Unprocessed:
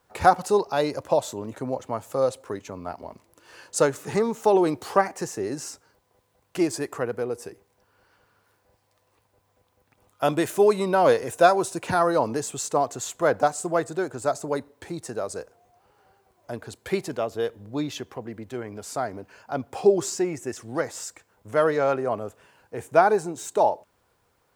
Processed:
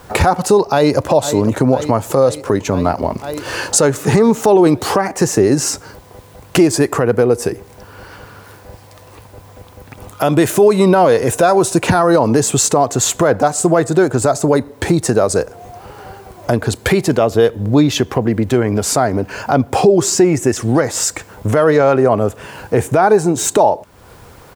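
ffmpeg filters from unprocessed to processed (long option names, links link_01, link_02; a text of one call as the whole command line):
ffmpeg -i in.wav -filter_complex "[0:a]asplit=2[link_01][link_02];[link_02]afade=type=in:start_time=0.6:duration=0.01,afade=type=out:start_time=1.07:duration=0.01,aecho=0:1:500|1000|1500|2000|2500|3000|3500|4000|4500:0.177828|0.12448|0.0871357|0.060995|0.0426965|0.0298875|0.0209213|0.0146449|0.0102514[link_03];[link_01][link_03]amix=inputs=2:normalize=0,lowshelf=frequency=290:gain=7,acompressor=threshold=-42dB:ratio=2,alimiter=level_in=26dB:limit=-1dB:release=50:level=0:latency=1,volume=-1dB" out.wav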